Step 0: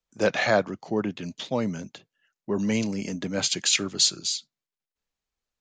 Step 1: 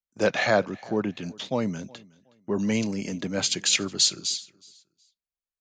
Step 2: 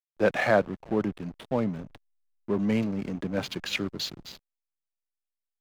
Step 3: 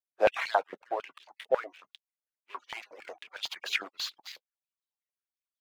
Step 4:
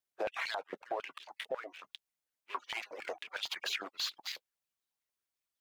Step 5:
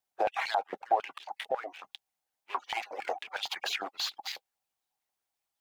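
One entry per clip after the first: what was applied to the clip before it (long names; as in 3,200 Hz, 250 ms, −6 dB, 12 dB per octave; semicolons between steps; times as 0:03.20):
noise gate −50 dBFS, range −15 dB; repeating echo 368 ms, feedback 26%, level −24 dB
low-pass filter 2,600 Hz 12 dB per octave; slack as between gear wheels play −32.5 dBFS
harmonic-percussive split with one part muted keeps percussive; high-pass on a step sequencer 11 Hz 510–3,400 Hz; level −3 dB
downward compressor 10 to 1, threshold −32 dBFS, peak gain reduction 15.5 dB; brickwall limiter −29.5 dBFS, peak gain reduction 10.5 dB; level +4 dB
parametric band 790 Hz +13 dB 0.39 octaves; level +2.5 dB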